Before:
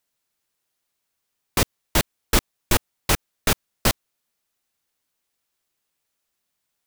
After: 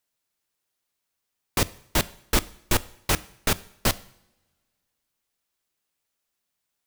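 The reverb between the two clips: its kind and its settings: two-slope reverb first 0.64 s, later 2.2 s, from -24 dB, DRR 17 dB; gain -3 dB

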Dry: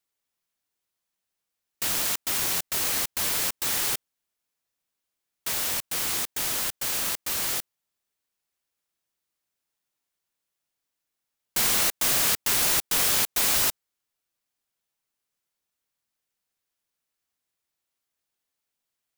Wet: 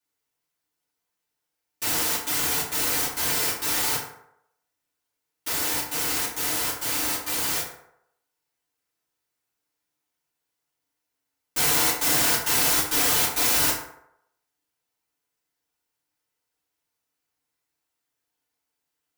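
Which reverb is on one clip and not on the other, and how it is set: FDN reverb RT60 0.76 s, low-frequency decay 0.75×, high-frequency decay 0.5×, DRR -9 dB; gain -6 dB

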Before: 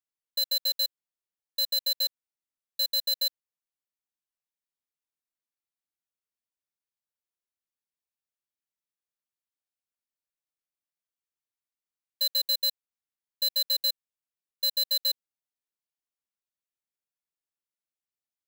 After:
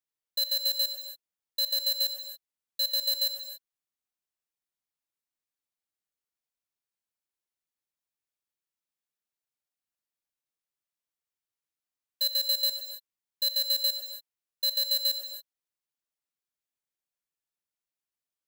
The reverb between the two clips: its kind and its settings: non-linear reverb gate 0.31 s flat, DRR 7 dB; gain -1 dB

